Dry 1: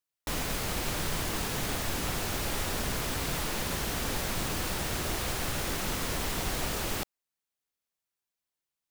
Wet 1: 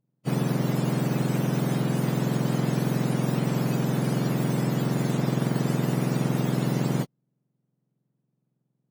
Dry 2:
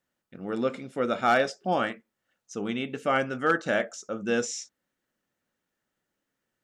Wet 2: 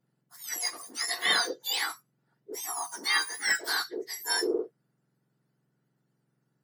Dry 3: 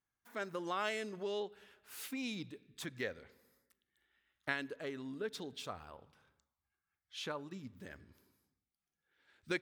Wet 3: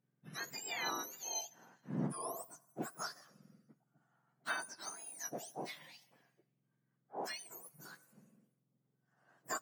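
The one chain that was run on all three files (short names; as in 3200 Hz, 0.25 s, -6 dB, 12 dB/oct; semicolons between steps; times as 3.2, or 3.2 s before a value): spectrum mirrored in octaves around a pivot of 1600 Hz; added harmonics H 3 -28 dB, 4 -44 dB, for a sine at -13 dBFS; gain +2.5 dB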